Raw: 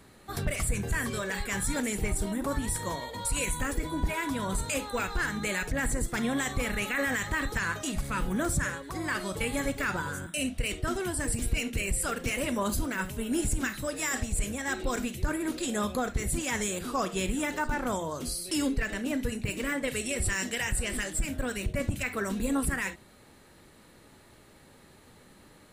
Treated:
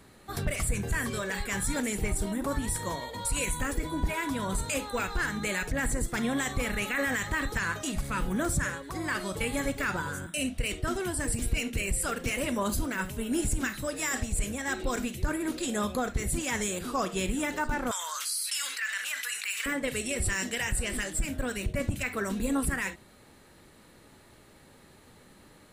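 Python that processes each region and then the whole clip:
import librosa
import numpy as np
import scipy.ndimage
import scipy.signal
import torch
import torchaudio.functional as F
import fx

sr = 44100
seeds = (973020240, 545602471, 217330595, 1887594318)

y = fx.chain(x, sr, fx.cheby1_highpass(hz=1400.0, order=3),
    fx.env_flatten(amount_pct=70), at=(17.91, 19.66))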